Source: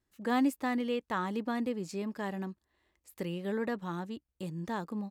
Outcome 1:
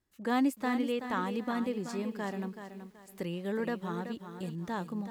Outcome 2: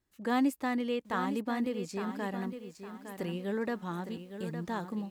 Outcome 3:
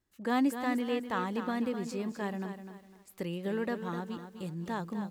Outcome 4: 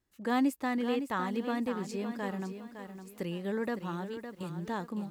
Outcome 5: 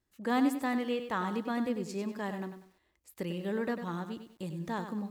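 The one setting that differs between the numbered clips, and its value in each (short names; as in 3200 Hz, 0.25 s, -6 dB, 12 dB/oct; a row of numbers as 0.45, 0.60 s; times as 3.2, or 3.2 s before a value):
lo-fi delay, time: 378, 860, 252, 560, 97 ms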